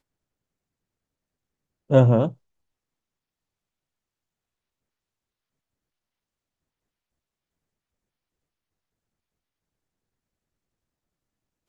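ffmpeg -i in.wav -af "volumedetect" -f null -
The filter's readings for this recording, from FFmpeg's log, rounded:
mean_volume: -30.8 dB
max_volume: -2.2 dB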